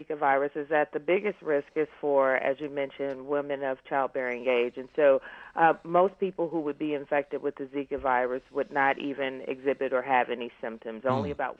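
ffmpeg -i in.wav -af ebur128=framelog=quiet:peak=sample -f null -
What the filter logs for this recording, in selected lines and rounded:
Integrated loudness:
  I:         -28.3 LUFS
  Threshold: -38.3 LUFS
Loudness range:
  LRA:         2.6 LU
  Threshold: -48.2 LUFS
  LRA low:   -29.5 LUFS
  LRA high:  -26.9 LUFS
Sample peak:
  Peak:       -8.8 dBFS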